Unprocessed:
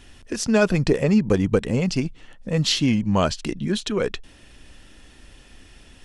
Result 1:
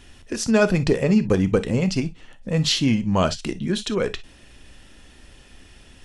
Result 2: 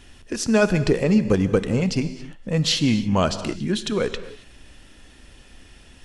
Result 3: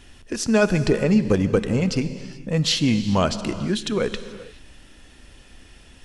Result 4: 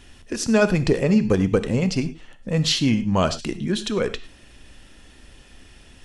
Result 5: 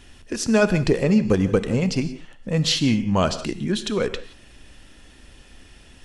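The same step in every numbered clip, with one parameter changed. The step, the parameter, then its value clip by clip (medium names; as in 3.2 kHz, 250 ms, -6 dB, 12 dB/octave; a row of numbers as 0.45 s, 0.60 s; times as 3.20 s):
gated-style reverb, gate: 80 ms, 300 ms, 460 ms, 130 ms, 200 ms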